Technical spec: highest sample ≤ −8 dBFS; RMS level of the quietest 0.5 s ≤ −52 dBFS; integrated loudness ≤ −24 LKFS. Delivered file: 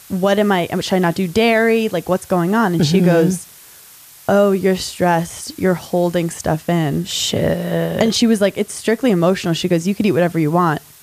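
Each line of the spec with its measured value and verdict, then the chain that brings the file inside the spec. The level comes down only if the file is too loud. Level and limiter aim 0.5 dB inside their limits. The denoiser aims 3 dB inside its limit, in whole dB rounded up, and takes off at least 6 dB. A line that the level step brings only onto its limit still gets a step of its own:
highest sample −4.5 dBFS: out of spec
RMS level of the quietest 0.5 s −42 dBFS: out of spec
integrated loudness −16.5 LKFS: out of spec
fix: broadband denoise 6 dB, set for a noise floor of −42 dBFS
level −8 dB

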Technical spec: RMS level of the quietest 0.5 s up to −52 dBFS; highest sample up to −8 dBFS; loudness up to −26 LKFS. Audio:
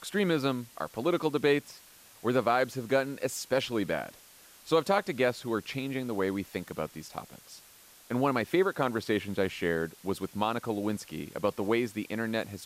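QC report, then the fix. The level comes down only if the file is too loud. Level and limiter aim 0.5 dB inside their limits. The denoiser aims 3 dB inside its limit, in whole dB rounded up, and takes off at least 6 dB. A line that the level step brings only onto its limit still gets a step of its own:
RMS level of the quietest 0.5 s −56 dBFS: in spec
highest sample −12.5 dBFS: in spec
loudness −30.5 LKFS: in spec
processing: no processing needed

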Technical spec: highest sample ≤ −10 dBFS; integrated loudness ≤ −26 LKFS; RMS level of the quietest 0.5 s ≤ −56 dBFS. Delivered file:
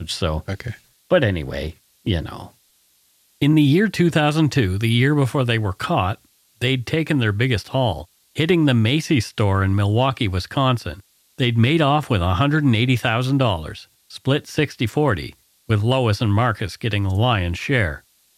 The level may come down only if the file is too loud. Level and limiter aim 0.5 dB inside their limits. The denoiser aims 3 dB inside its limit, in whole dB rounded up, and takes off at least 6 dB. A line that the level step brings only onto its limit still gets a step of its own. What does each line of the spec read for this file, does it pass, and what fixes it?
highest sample −5.5 dBFS: out of spec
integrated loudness −19.5 LKFS: out of spec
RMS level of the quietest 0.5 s −60 dBFS: in spec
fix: level −7 dB

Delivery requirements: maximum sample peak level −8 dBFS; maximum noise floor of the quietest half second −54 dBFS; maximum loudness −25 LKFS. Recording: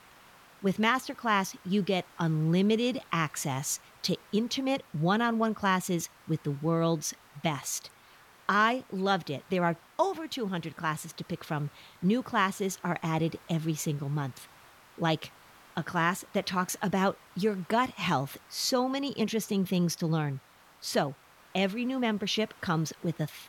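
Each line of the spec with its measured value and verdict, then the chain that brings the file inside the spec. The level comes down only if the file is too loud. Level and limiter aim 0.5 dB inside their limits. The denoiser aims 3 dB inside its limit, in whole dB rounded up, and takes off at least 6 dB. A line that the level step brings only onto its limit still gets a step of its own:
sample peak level −11.5 dBFS: in spec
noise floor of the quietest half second −57 dBFS: in spec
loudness −30.0 LKFS: in spec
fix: no processing needed

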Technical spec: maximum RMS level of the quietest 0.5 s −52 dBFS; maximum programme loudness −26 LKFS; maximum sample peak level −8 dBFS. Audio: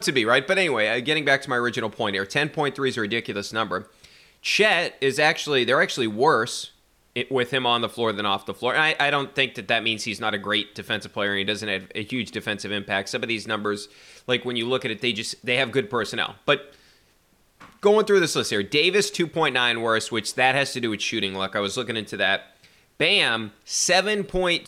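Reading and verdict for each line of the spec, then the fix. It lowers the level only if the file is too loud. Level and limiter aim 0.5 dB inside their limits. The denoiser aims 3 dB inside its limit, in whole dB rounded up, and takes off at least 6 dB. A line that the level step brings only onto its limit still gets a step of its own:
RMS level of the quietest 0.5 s −62 dBFS: in spec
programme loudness −23.0 LKFS: out of spec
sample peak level −6.5 dBFS: out of spec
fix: level −3.5 dB

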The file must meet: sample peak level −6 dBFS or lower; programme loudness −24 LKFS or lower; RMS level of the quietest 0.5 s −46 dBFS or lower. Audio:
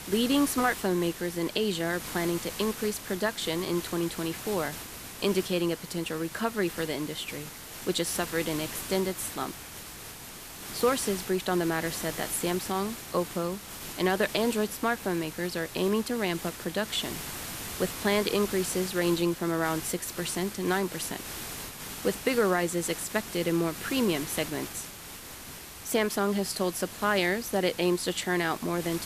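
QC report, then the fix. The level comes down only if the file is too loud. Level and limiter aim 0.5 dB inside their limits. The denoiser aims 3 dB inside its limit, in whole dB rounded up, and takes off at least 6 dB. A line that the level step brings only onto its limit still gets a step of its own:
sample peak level −10.0 dBFS: in spec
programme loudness −29.5 LKFS: in spec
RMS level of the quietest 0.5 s −44 dBFS: out of spec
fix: broadband denoise 6 dB, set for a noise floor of −44 dBFS

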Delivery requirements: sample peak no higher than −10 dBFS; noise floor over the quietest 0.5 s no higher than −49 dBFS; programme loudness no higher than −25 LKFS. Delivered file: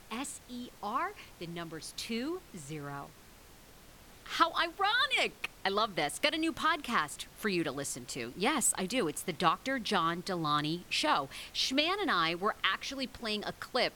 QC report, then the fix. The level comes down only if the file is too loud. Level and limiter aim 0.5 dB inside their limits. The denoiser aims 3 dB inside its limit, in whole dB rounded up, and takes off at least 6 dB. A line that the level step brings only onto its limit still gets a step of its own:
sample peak −13.0 dBFS: in spec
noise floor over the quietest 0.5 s −56 dBFS: in spec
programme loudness −32.0 LKFS: in spec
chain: no processing needed

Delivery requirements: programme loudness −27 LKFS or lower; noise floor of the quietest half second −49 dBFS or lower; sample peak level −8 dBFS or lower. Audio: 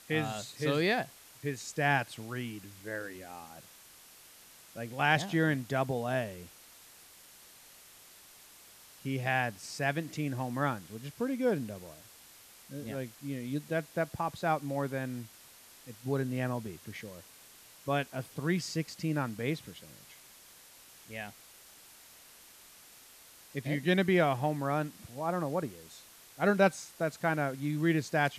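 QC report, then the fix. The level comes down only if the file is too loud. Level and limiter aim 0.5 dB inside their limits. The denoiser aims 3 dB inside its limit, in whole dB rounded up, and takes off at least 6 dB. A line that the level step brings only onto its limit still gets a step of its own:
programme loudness −33.0 LKFS: in spec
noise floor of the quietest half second −56 dBFS: in spec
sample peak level −12.5 dBFS: in spec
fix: no processing needed

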